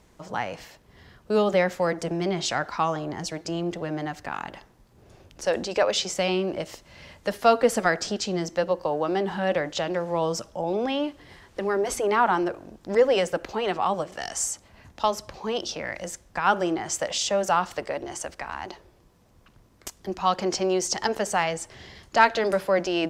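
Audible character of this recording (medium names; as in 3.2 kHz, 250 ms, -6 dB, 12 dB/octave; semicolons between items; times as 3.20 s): noise floor -58 dBFS; spectral tilt -3.5 dB/octave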